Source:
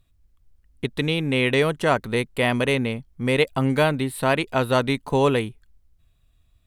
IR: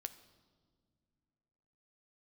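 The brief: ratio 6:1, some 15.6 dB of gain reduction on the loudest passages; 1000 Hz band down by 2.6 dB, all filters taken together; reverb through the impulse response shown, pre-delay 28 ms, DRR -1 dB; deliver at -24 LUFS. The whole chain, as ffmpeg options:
-filter_complex "[0:a]equalizer=f=1k:t=o:g=-3.5,acompressor=threshold=-33dB:ratio=6,asplit=2[a][b];[1:a]atrim=start_sample=2205,adelay=28[c];[b][c]afir=irnorm=-1:irlink=0,volume=4.5dB[d];[a][d]amix=inputs=2:normalize=0,volume=9.5dB"

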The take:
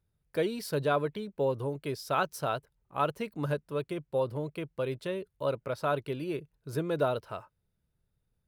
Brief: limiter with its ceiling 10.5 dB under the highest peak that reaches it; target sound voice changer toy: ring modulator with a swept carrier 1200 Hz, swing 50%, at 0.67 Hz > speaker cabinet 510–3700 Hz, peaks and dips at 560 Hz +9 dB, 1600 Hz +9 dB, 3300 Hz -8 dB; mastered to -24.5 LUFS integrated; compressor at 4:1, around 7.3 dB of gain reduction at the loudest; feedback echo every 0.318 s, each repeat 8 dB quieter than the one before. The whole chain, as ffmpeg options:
-af "acompressor=threshold=-31dB:ratio=4,alimiter=level_in=7.5dB:limit=-24dB:level=0:latency=1,volume=-7.5dB,aecho=1:1:318|636|954|1272|1590:0.398|0.159|0.0637|0.0255|0.0102,aeval=exprs='val(0)*sin(2*PI*1200*n/s+1200*0.5/0.67*sin(2*PI*0.67*n/s))':c=same,highpass=510,equalizer=f=560:t=q:w=4:g=9,equalizer=f=1.6k:t=q:w=4:g=9,equalizer=f=3.3k:t=q:w=4:g=-8,lowpass=f=3.7k:w=0.5412,lowpass=f=3.7k:w=1.3066,volume=15dB"

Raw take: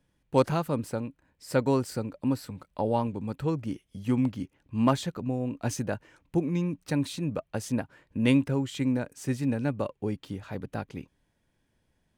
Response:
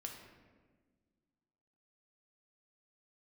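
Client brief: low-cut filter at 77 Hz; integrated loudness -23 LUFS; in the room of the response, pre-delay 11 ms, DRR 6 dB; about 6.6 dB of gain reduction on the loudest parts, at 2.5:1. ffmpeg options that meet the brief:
-filter_complex "[0:a]highpass=77,acompressor=threshold=-27dB:ratio=2.5,asplit=2[a][b];[1:a]atrim=start_sample=2205,adelay=11[c];[b][c]afir=irnorm=-1:irlink=0,volume=-3dB[d];[a][d]amix=inputs=2:normalize=0,volume=9dB"

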